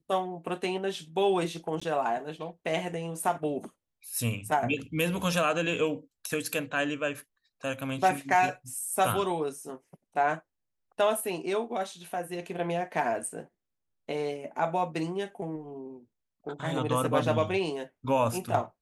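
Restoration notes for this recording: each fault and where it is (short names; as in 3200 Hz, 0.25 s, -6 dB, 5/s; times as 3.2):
1.8–1.81 gap 15 ms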